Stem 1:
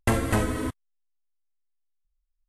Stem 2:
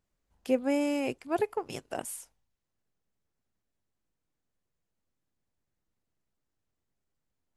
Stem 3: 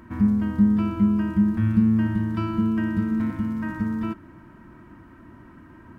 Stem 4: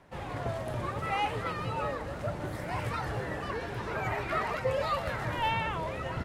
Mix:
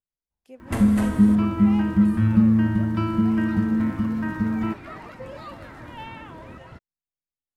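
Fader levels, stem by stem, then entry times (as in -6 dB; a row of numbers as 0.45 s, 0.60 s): -6.0 dB, -18.5 dB, +2.0 dB, -9.0 dB; 0.65 s, 0.00 s, 0.60 s, 0.55 s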